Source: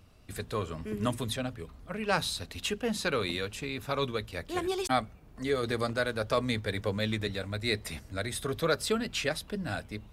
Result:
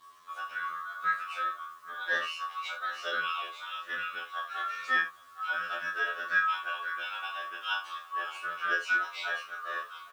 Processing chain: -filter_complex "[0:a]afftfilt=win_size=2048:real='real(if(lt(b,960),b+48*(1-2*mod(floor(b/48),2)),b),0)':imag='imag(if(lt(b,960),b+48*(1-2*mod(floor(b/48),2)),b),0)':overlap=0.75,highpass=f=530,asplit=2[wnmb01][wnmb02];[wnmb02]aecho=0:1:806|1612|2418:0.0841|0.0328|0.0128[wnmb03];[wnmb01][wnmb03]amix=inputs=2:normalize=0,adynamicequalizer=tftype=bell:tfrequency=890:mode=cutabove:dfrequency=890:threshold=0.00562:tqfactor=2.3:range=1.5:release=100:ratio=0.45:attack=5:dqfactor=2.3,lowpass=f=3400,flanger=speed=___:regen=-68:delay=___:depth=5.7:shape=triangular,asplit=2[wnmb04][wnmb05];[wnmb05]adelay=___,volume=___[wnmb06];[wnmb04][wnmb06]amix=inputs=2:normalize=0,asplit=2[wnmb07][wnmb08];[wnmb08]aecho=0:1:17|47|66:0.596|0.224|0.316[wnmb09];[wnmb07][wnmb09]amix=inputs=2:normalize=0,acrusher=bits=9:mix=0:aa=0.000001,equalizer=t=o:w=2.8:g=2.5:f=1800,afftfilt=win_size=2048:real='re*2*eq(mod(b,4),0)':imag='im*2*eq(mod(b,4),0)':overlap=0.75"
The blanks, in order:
0.65, 6.2, 25, -3dB